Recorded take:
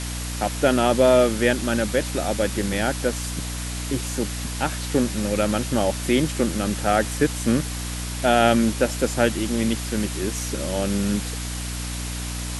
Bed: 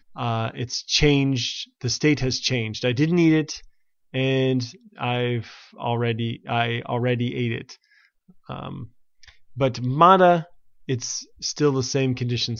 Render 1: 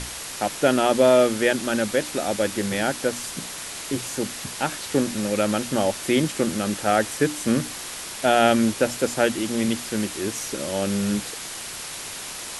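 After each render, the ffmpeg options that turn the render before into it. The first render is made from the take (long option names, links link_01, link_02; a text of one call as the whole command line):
ffmpeg -i in.wav -af "bandreject=frequency=60:width_type=h:width=6,bandreject=frequency=120:width_type=h:width=6,bandreject=frequency=180:width_type=h:width=6,bandreject=frequency=240:width_type=h:width=6,bandreject=frequency=300:width_type=h:width=6" out.wav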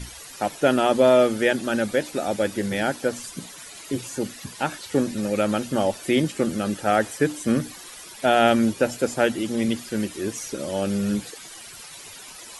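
ffmpeg -i in.wav -af "afftdn=noise_reduction=13:noise_floor=-35" out.wav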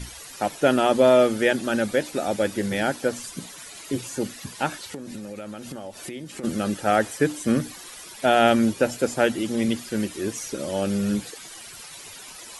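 ffmpeg -i in.wav -filter_complex "[0:a]asplit=3[link_01][link_02][link_03];[link_01]afade=type=out:start_time=4.77:duration=0.02[link_04];[link_02]acompressor=threshold=-31dB:ratio=16:attack=3.2:release=140:knee=1:detection=peak,afade=type=in:start_time=4.77:duration=0.02,afade=type=out:start_time=6.43:duration=0.02[link_05];[link_03]afade=type=in:start_time=6.43:duration=0.02[link_06];[link_04][link_05][link_06]amix=inputs=3:normalize=0" out.wav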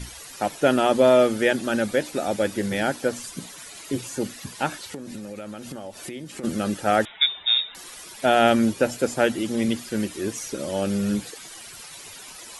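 ffmpeg -i in.wav -filter_complex "[0:a]asettb=1/sr,asplit=3[link_01][link_02][link_03];[link_01]atrim=end=7.054[link_04];[link_02]atrim=start=7.05:end=7.75,asetpts=PTS-STARTPTS,afade=type=in:duration=0.004:curve=qsin,afade=type=out:start_time=0.696:duration=0.004:curve=qsin,lowpass=frequency=3300:width_type=q:width=0.5098,lowpass=frequency=3300:width_type=q:width=0.6013,lowpass=frequency=3300:width_type=q:width=0.9,lowpass=frequency=3300:width_type=q:width=2.563,afreqshift=-3900[link_05];[link_03]atrim=start=7.746[link_06];[link_04][link_05]acrossfade=duration=0.004:curve1=hsin:curve2=qsin[link_07];[link_07][link_06]acrossfade=duration=0.004:curve1=qsin:curve2=hsin" out.wav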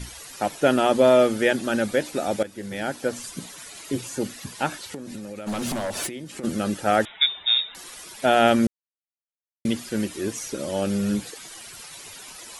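ffmpeg -i in.wav -filter_complex "[0:a]asplit=3[link_01][link_02][link_03];[link_01]afade=type=out:start_time=5.46:duration=0.02[link_04];[link_02]aeval=exprs='0.0668*sin(PI/2*2.82*val(0)/0.0668)':channel_layout=same,afade=type=in:start_time=5.46:duration=0.02,afade=type=out:start_time=6.06:duration=0.02[link_05];[link_03]afade=type=in:start_time=6.06:duration=0.02[link_06];[link_04][link_05][link_06]amix=inputs=3:normalize=0,asplit=4[link_07][link_08][link_09][link_10];[link_07]atrim=end=2.43,asetpts=PTS-STARTPTS,afade=type=out:start_time=2.426:duration=0.004:curve=hsin:silence=0.177828[link_11];[link_08]atrim=start=2.43:end=8.67,asetpts=PTS-STARTPTS,afade=type=in:duration=0.82:silence=0.177828,afade=type=out:start_time=6.236:duration=0.004:curve=hsin[link_12];[link_09]atrim=start=8.67:end=9.65,asetpts=PTS-STARTPTS,volume=0[link_13];[link_10]atrim=start=9.65,asetpts=PTS-STARTPTS,afade=type=in:duration=0.004:curve=hsin[link_14];[link_11][link_12][link_13][link_14]concat=n=4:v=0:a=1" out.wav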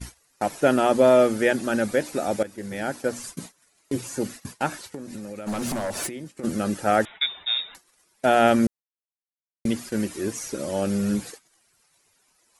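ffmpeg -i in.wav -af "agate=range=-23dB:threshold=-37dB:ratio=16:detection=peak,equalizer=frequency=3300:width=2:gain=-5.5" out.wav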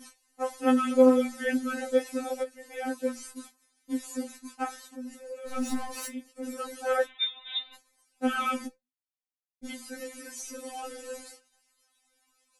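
ffmpeg -i in.wav -af "flanger=delay=4.9:depth=9.1:regen=60:speed=0.75:shape=sinusoidal,afftfilt=real='re*3.46*eq(mod(b,12),0)':imag='im*3.46*eq(mod(b,12),0)':win_size=2048:overlap=0.75" out.wav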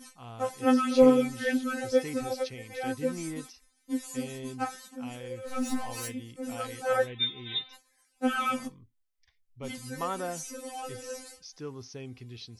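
ffmpeg -i in.wav -i bed.wav -filter_complex "[1:a]volume=-20dB[link_01];[0:a][link_01]amix=inputs=2:normalize=0" out.wav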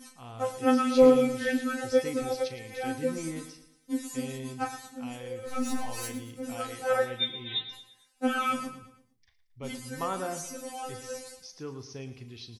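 ffmpeg -i in.wav -filter_complex "[0:a]asplit=2[link_01][link_02];[link_02]adelay=37,volume=-11.5dB[link_03];[link_01][link_03]amix=inputs=2:normalize=0,aecho=1:1:113|226|339|452:0.224|0.0963|0.0414|0.0178" out.wav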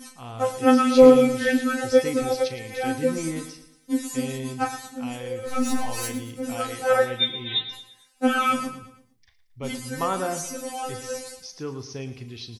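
ffmpeg -i in.wav -af "volume=6.5dB,alimiter=limit=-2dB:level=0:latency=1" out.wav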